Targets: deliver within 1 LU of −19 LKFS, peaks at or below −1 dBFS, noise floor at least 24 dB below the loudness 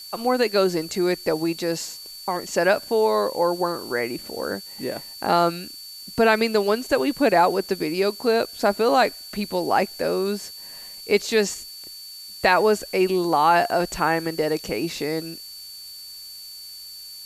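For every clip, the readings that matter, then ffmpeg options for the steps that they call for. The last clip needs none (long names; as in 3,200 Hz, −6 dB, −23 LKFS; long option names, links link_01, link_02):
interfering tone 4,500 Hz; level of the tone −38 dBFS; background noise floor −40 dBFS; target noise floor −47 dBFS; integrated loudness −22.5 LKFS; sample peak −6.0 dBFS; target loudness −19.0 LKFS
→ -af "bandreject=frequency=4500:width=30"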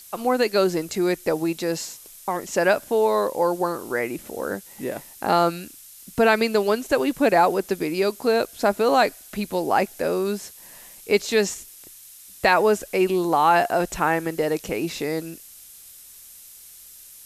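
interfering tone none found; background noise floor −46 dBFS; target noise floor −47 dBFS
→ -af "afftdn=noise_reduction=6:noise_floor=-46"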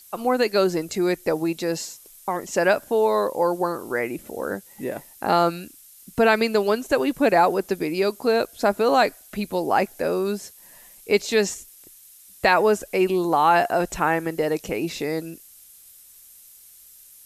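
background noise floor −49 dBFS; integrated loudness −22.5 LKFS; sample peak −5.5 dBFS; target loudness −19.0 LKFS
→ -af "volume=3.5dB"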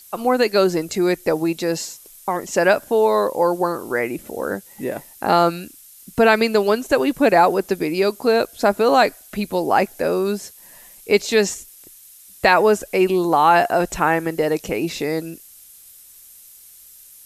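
integrated loudness −19.0 LKFS; sample peak −2.0 dBFS; background noise floor −46 dBFS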